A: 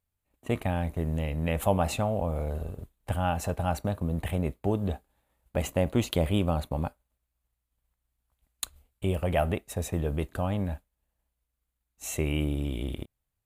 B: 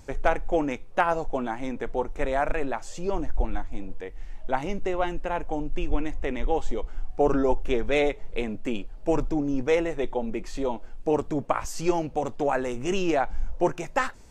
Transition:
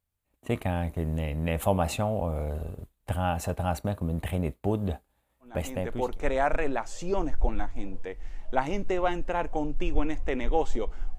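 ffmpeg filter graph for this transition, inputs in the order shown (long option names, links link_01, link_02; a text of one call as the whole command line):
ffmpeg -i cue0.wav -i cue1.wav -filter_complex "[0:a]apad=whole_dur=11.18,atrim=end=11.18,atrim=end=6.2,asetpts=PTS-STARTPTS[link_01];[1:a]atrim=start=1.36:end=7.14,asetpts=PTS-STARTPTS[link_02];[link_01][link_02]acrossfade=duration=0.8:curve1=tri:curve2=tri" out.wav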